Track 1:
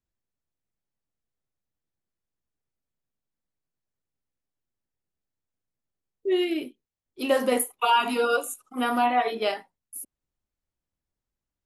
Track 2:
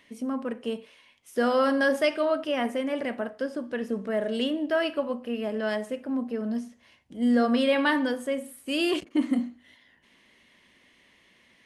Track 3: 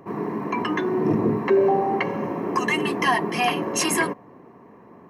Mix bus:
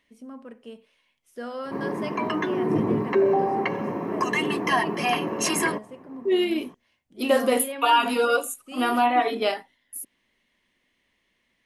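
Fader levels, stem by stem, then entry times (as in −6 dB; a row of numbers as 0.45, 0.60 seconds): +2.0, −11.0, −2.0 decibels; 0.00, 0.00, 1.65 seconds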